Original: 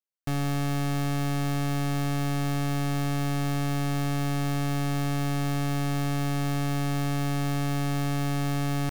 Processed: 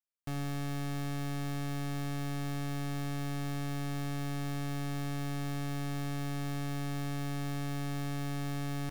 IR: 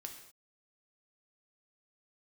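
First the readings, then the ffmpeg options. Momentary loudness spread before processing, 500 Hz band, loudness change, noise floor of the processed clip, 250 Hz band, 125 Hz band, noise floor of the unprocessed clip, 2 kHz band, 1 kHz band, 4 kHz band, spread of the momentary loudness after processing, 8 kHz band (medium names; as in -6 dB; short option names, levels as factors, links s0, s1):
0 LU, -9.0 dB, -8.5 dB, -35 dBFS, -8.5 dB, -8.5 dB, -27 dBFS, -8.0 dB, -9.5 dB, -8.0 dB, 0 LU, -8.5 dB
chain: -filter_complex "[0:a]asplit=2[s0][s1];[1:a]atrim=start_sample=2205,adelay=91[s2];[s1][s2]afir=irnorm=-1:irlink=0,volume=0.211[s3];[s0][s3]amix=inputs=2:normalize=0,volume=0.376"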